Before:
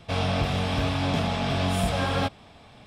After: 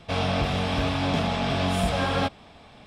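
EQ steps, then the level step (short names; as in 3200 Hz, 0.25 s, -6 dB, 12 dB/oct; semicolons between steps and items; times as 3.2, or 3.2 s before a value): bell 110 Hz -5.5 dB 0.57 oct; high shelf 10000 Hz -7 dB; +1.5 dB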